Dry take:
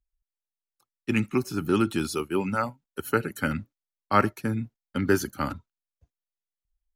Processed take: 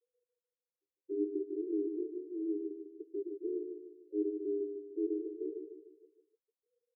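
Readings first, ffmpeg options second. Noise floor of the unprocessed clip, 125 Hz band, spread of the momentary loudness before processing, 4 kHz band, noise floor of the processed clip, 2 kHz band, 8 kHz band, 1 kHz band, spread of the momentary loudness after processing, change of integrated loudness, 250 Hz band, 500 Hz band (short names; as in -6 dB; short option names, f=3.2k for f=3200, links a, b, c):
under -85 dBFS, under -40 dB, 10 LU, under -40 dB, under -85 dBFS, under -40 dB, under -40 dB, under -40 dB, 10 LU, -10.5 dB, -9.5 dB, -6.5 dB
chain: -filter_complex "[0:a]afftfilt=real='real(if(between(b,1,1008),(2*floor((b-1)/24)+1)*24-b,b),0)':imag='imag(if(between(b,1,1008),(2*floor((b-1)/24)+1)*24-b,b),0)*if(between(b,1,1008),-1,1)':win_size=2048:overlap=0.75,asuperpass=centerf=390:order=20:qfactor=2,asplit=2[a][b];[b]aecho=0:1:150|300|450|600|750:0.473|0.203|0.0875|0.0376|0.0162[c];[a][c]amix=inputs=2:normalize=0,volume=-4dB"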